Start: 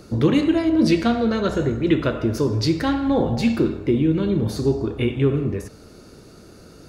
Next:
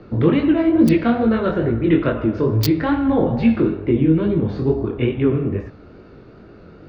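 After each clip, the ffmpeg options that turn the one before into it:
-filter_complex "[0:a]flanger=delay=17.5:depth=7.5:speed=2.3,acrossover=split=190|1100|3100[a][b][c][d];[d]acrusher=bits=3:mix=0:aa=0.000001[e];[a][b][c][e]amix=inputs=4:normalize=0,volume=5.5dB"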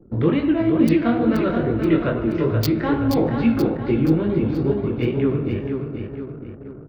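-af "aecho=1:1:478|956|1434|1912|2390|2868:0.501|0.256|0.13|0.0665|0.0339|0.0173,anlmdn=1.58,volume=-3dB"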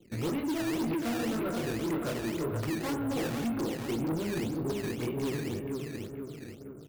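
-af "acrusher=samples=12:mix=1:aa=0.000001:lfo=1:lforange=19.2:lforate=1.9,lowshelf=f=68:g=-11.5,asoftclip=type=tanh:threshold=-20dB,volume=-7.5dB"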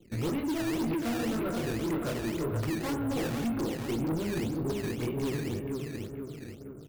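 -af "lowshelf=f=83:g=7.5"

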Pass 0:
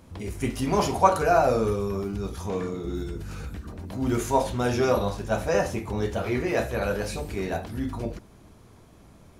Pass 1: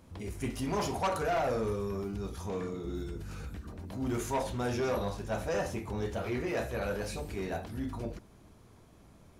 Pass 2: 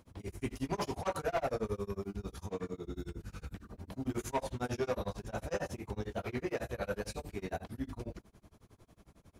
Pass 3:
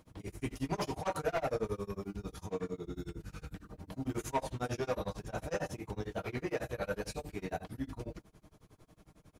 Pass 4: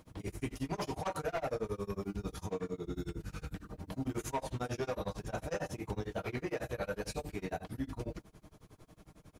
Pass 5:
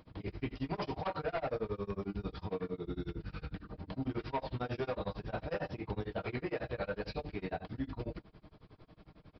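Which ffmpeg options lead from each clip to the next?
-af "asoftclip=type=tanh:threshold=-20dB,volume=-5.5dB"
-af "tremolo=f=11:d=0.99"
-af "aecho=1:1:6.5:0.34"
-af "alimiter=level_in=6.5dB:limit=-24dB:level=0:latency=1:release=237,volume=-6.5dB,volume=3dB"
-af "aresample=11025,aresample=44100"

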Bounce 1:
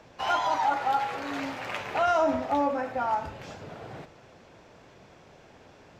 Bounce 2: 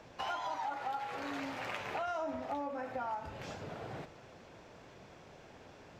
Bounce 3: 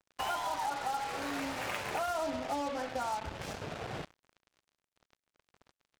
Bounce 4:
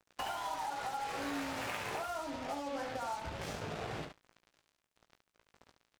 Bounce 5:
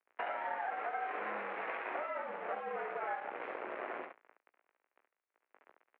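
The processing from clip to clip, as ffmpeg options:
-af "acompressor=threshold=-35dB:ratio=4,volume=-2dB"
-af "equalizer=f=61:t=o:w=0.35:g=10.5,acrusher=bits=6:mix=0:aa=0.5,volume=3dB"
-filter_complex "[0:a]acompressor=threshold=-39dB:ratio=6,asplit=2[a][b];[b]aecho=0:1:18|71:0.447|0.447[c];[a][c]amix=inputs=2:normalize=0,volume=1.5dB"
-af "aeval=exprs='max(val(0),0)':c=same,highpass=f=450:t=q:w=0.5412,highpass=f=450:t=q:w=1.307,lowpass=f=2.4k:t=q:w=0.5176,lowpass=f=2.4k:t=q:w=0.7071,lowpass=f=2.4k:t=q:w=1.932,afreqshift=-73,volume=6dB"

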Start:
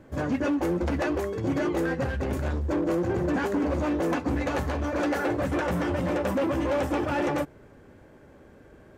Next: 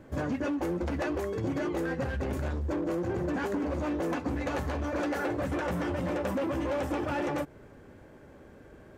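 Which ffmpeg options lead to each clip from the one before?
-af "acompressor=threshold=-28dB:ratio=6"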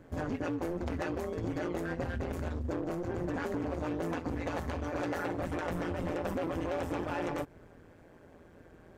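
-af "tremolo=f=170:d=0.824"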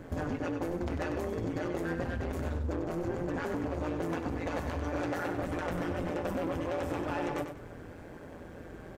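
-af "acompressor=threshold=-42dB:ratio=3,aecho=1:1:96|192|288|384:0.398|0.119|0.0358|0.0107,volume=8.5dB"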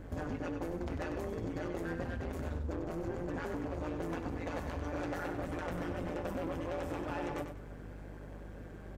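-af "aeval=exprs='val(0)+0.00708*(sin(2*PI*50*n/s)+sin(2*PI*2*50*n/s)/2+sin(2*PI*3*50*n/s)/3+sin(2*PI*4*50*n/s)/4+sin(2*PI*5*50*n/s)/5)':c=same,volume=-4.5dB"

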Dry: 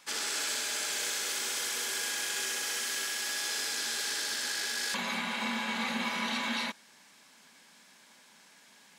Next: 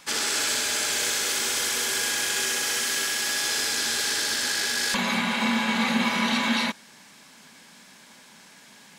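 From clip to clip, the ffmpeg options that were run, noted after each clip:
-af "lowshelf=f=180:g=11,volume=7.5dB"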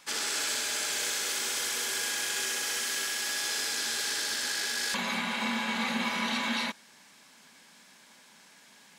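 -af "lowshelf=f=220:g=-6.5,volume=-5.5dB"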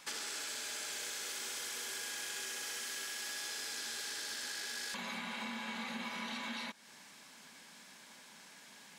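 -af "acompressor=threshold=-40dB:ratio=5"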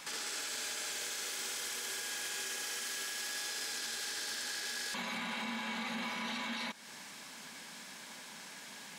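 -af "alimiter=level_in=13.5dB:limit=-24dB:level=0:latency=1:release=17,volume=-13.5dB,volume=7dB"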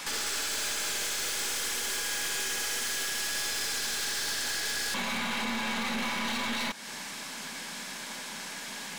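-af "aeval=exprs='0.0316*(cos(1*acos(clip(val(0)/0.0316,-1,1)))-cos(1*PI/2))+0.00708*(cos(2*acos(clip(val(0)/0.0316,-1,1)))-cos(2*PI/2))+0.00447*(cos(5*acos(clip(val(0)/0.0316,-1,1)))-cos(5*PI/2))+0.00501*(cos(6*acos(clip(val(0)/0.0316,-1,1)))-cos(6*PI/2))+0.00251*(cos(8*acos(clip(val(0)/0.0316,-1,1)))-cos(8*PI/2))':c=same,volume=5.5dB"

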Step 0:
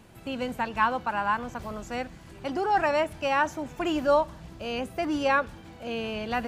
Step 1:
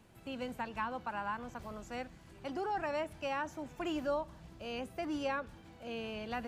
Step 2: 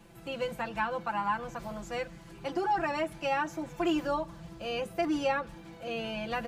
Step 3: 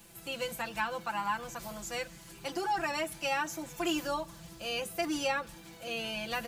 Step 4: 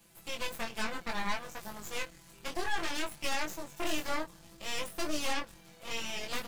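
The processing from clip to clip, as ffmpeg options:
-filter_complex "[0:a]acrossover=split=430[a][b];[b]acompressor=threshold=-26dB:ratio=3[c];[a][c]amix=inputs=2:normalize=0,volume=-9dB"
-af "aecho=1:1:5.9:0.93,volume=4dB"
-af "crystalizer=i=5:c=0,volume=-4.5dB"
-af "aeval=exprs='0.126*(cos(1*acos(clip(val(0)/0.126,-1,1)))-cos(1*PI/2))+0.0251*(cos(3*acos(clip(val(0)/0.126,-1,1)))-cos(3*PI/2))+0.00708*(cos(5*acos(clip(val(0)/0.126,-1,1)))-cos(5*PI/2))+0.0316*(cos(8*acos(clip(val(0)/0.126,-1,1)))-cos(8*PI/2))':c=same,flanger=delay=19.5:depth=3.1:speed=0.61"

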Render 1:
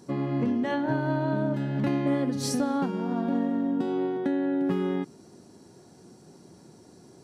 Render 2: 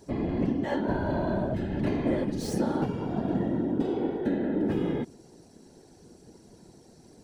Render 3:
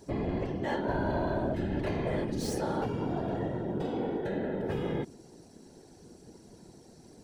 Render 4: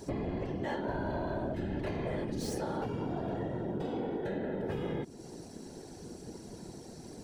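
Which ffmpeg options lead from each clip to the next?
-filter_complex "[0:a]acrossover=split=1800[a][b];[a]equalizer=f=1.2k:w=4.4:g=-11.5[c];[b]asoftclip=type=tanh:threshold=-37.5dB[d];[c][d]amix=inputs=2:normalize=0,afftfilt=real='hypot(re,im)*cos(2*PI*random(0))':imag='hypot(re,im)*sin(2*PI*random(1))':win_size=512:overlap=0.75,volume=5dB"
-af "afftfilt=real='re*lt(hypot(re,im),0.282)':imag='im*lt(hypot(re,im),0.282)':win_size=1024:overlap=0.75"
-af "acompressor=threshold=-42dB:ratio=3,volume=6.5dB"

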